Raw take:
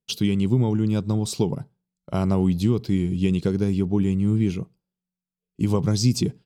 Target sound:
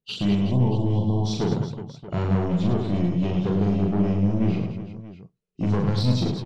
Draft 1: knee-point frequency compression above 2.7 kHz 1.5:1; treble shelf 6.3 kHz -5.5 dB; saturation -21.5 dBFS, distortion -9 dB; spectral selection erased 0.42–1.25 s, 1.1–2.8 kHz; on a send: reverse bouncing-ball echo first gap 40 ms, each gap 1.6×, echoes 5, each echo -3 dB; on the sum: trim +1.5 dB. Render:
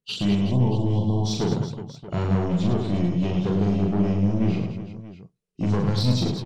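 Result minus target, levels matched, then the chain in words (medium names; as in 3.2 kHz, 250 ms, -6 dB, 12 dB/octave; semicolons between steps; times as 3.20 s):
8 kHz band +4.0 dB
knee-point frequency compression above 2.7 kHz 1.5:1; treble shelf 6.3 kHz -15 dB; saturation -21.5 dBFS, distortion -9 dB; spectral selection erased 0.42–1.25 s, 1.1–2.8 kHz; on a send: reverse bouncing-ball echo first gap 40 ms, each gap 1.6×, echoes 5, each echo -3 dB; on the sum: trim +1.5 dB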